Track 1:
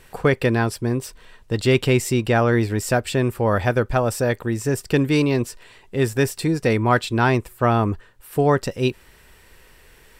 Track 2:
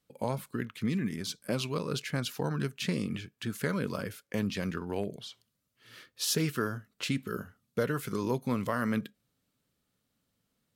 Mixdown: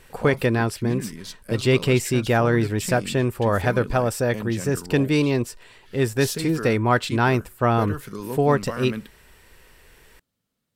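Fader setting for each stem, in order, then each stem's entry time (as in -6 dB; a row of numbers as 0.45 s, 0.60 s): -1.5 dB, -1.0 dB; 0.00 s, 0.00 s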